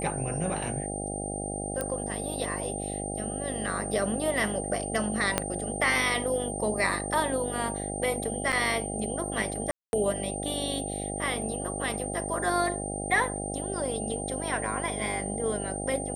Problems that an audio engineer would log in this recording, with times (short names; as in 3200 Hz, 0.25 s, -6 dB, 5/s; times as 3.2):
buzz 50 Hz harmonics 16 -35 dBFS
tone 8800 Hz -36 dBFS
1.81 pop -15 dBFS
5.38 pop -8 dBFS
8.52–8.53 gap 7.2 ms
9.71–9.93 gap 0.221 s